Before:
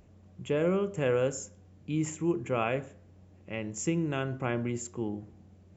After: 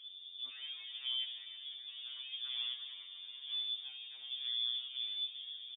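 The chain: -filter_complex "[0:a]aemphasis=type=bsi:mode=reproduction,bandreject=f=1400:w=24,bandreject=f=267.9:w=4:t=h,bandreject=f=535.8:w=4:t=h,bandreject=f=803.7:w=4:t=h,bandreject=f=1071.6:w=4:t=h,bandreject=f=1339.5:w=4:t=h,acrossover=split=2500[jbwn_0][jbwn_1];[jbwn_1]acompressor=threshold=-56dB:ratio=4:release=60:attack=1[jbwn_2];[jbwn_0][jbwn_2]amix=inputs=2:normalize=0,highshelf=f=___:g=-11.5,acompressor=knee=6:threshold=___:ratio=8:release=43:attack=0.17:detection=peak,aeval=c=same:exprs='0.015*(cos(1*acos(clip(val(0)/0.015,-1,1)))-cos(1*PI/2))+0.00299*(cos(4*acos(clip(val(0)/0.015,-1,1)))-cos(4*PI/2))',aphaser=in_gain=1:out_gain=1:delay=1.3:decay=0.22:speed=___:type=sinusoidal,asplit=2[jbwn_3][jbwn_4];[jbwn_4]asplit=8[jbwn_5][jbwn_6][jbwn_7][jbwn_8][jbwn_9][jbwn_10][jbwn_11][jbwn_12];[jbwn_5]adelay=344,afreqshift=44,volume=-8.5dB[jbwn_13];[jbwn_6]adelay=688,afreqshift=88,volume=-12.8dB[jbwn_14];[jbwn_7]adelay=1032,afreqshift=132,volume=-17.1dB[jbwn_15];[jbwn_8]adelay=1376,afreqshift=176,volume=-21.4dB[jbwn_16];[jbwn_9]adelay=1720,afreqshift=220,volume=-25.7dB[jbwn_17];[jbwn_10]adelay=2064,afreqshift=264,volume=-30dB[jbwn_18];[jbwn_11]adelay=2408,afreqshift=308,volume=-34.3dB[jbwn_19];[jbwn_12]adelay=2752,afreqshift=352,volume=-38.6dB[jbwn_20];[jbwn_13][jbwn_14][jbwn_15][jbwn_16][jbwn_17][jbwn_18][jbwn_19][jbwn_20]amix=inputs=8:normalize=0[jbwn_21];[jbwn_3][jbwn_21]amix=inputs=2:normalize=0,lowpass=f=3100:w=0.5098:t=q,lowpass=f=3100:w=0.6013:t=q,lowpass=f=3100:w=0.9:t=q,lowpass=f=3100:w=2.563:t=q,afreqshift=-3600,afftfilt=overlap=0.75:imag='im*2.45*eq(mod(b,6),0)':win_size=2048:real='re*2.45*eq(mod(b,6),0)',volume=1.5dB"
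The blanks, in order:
2200, -40dB, 0.93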